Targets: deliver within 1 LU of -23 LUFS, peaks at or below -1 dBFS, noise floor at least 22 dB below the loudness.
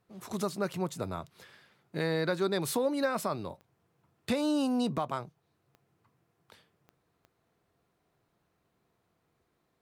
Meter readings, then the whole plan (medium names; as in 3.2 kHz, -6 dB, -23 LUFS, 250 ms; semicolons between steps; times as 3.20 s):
clicks found 4; loudness -32.0 LUFS; peak level -18.0 dBFS; loudness target -23.0 LUFS
-> de-click; trim +9 dB